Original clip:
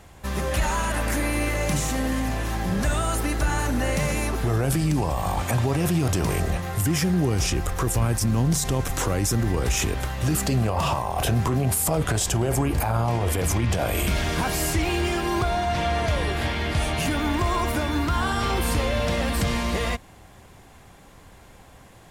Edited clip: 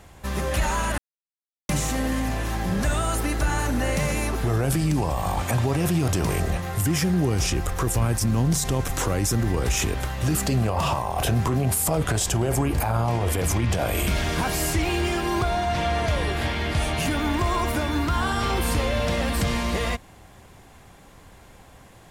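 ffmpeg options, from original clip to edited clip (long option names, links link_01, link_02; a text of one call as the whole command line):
ffmpeg -i in.wav -filter_complex "[0:a]asplit=3[link_01][link_02][link_03];[link_01]atrim=end=0.98,asetpts=PTS-STARTPTS,afade=type=out:start_time=0.976:duration=0.004:curve=hsin[link_04];[link_02]atrim=start=0.98:end=1.69,asetpts=PTS-STARTPTS,volume=0[link_05];[link_03]atrim=start=1.69,asetpts=PTS-STARTPTS,afade=type=in:duration=0.004:curve=hsin[link_06];[link_04][link_05][link_06]concat=n=3:v=0:a=1" out.wav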